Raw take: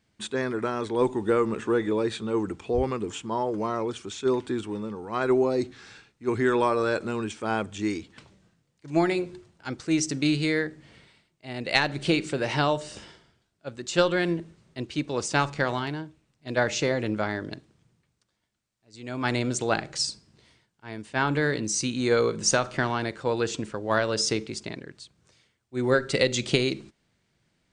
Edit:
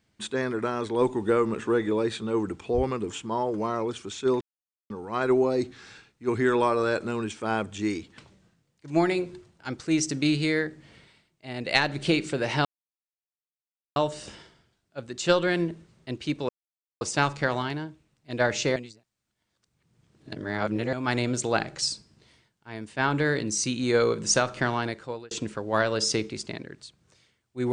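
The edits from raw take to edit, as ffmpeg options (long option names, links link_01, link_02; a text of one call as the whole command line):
ffmpeg -i in.wav -filter_complex "[0:a]asplit=8[link_01][link_02][link_03][link_04][link_05][link_06][link_07][link_08];[link_01]atrim=end=4.41,asetpts=PTS-STARTPTS,afade=type=out:start_time=4.406:duration=0.004:curve=hsin[link_09];[link_02]atrim=start=4.41:end=4.9,asetpts=PTS-STARTPTS,volume=0[link_10];[link_03]atrim=start=4.9:end=12.65,asetpts=PTS-STARTPTS,afade=type=in:duration=0.004:curve=hsin,afade=type=out:start_time=7.746:duration=0.004:curve=hsin,apad=pad_dur=1.31[link_11];[link_04]atrim=start=12.65:end=15.18,asetpts=PTS-STARTPTS,afade=type=in:duration=0.004:curve=hsin,afade=type=out:start_time=2.526:duration=0.004:curve=hsin,apad=pad_dur=0.52[link_12];[link_05]atrim=start=15.18:end=16.932,asetpts=PTS-STARTPTS,afade=type=in:duration=0.004:curve=hsin[link_13];[link_06]atrim=start=16.928:end=19.102,asetpts=PTS-STARTPTS,areverse[link_14];[link_07]atrim=start=19.098:end=23.48,asetpts=PTS-STARTPTS,afade=type=out:start_time=3.892:duration=0.49[link_15];[link_08]atrim=start=23.48,asetpts=PTS-STARTPTS,afade=type=in:duration=0.004:curve=hsin[link_16];[link_09][link_10][link_11][link_12][link_13]concat=n=5:v=0:a=1[link_17];[link_17][link_14]acrossfade=duration=0.004:curve1=hsin:curve2=hsin[link_18];[link_15][link_16]concat=n=2:v=0:a=1[link_19];[link_18][link_19]acrossfade=duration=0.004:curve1=hsin:curve2=hsin" out.wav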